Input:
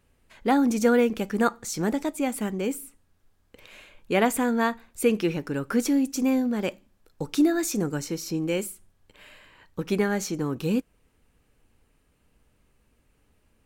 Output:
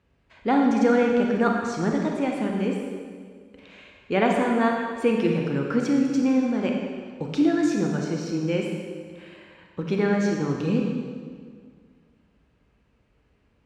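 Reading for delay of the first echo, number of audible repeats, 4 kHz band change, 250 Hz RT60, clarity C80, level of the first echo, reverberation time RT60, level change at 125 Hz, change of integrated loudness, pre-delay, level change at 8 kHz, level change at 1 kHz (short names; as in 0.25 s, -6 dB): none, none, -1.5 dB, 2.1 s, 3.5 dB, none, 1.9 s, +4.5 dB, +2.0 dB, 30 ms, -9.5 dB, +2.5 dB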